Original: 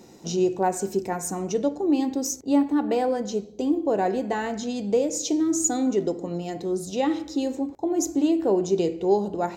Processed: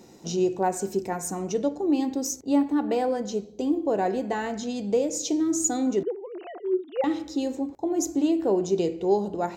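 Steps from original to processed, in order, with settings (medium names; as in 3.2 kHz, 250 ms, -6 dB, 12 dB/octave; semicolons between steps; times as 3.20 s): 6.03–7.04 s: formants replaced by sine waves; trim -1.5 dB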